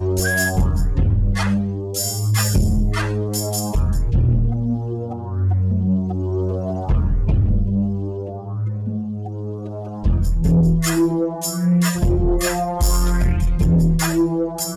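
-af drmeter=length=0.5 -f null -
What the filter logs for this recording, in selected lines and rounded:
Channel 1: DR: 2.2
Overall DR: 2.2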